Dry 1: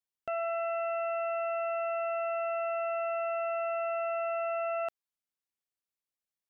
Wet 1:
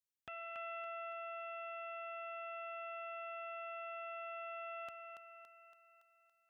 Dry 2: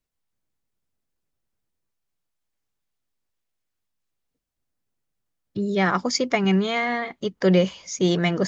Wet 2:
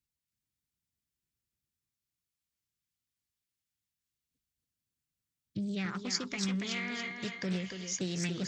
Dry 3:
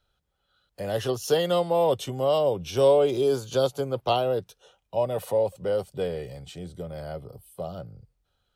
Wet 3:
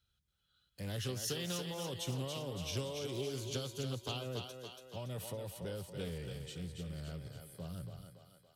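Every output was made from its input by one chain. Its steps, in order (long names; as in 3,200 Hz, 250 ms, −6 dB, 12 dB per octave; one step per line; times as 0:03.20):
high-pass filter 64 Hz 12 dB per octave
downward compressor, threshold −24 dBFS
guitar amp tone stack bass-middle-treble 6-0-2
on a send: feedback echo with a high-pass in the loop 282 ms, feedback 57%, high-pass 300 Hz, level −5 dB
on the sum: highs frequency-modulated by the lows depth 0.27 ms
level +11.5 dB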